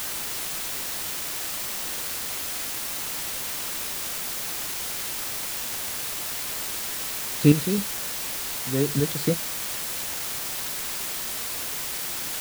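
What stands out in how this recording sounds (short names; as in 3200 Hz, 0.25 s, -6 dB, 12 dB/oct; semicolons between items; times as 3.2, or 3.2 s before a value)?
chopped level 2.7 Hz, depth 60%, duty 30%; a quantiser's noise floor 6-bit, dither triangular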